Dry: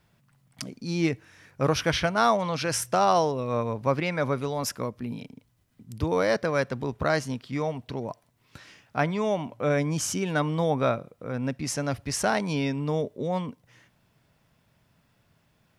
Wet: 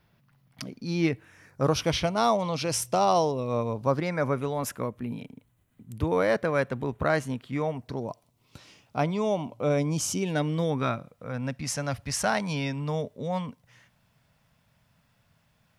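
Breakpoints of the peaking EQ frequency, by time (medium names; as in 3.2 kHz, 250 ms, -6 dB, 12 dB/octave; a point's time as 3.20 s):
peaking EQ -11 dB 0.6 oct
1.05 s 7.9 kHz
1.83 s 1.6 kHz
3.69 s 1.6 kHz
4.47 s 5.1 kHz
7.68 s 5.1 kHz
8.10 s 1.7 kHz
10.15 s 1.7 kHz
11.16 s 350 Hz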